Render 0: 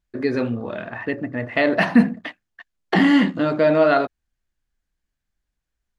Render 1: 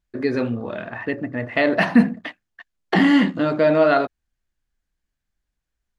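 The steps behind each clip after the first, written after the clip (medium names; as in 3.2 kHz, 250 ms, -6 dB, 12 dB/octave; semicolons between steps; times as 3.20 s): no audible change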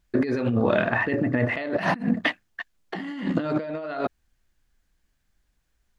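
compressor with a negative ratio -28 dBFS, ratio -1; trim +1.5 dB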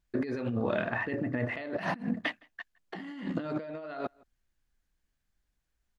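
echo from a far wall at 28 m, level -27 dB; trim -8.5 dB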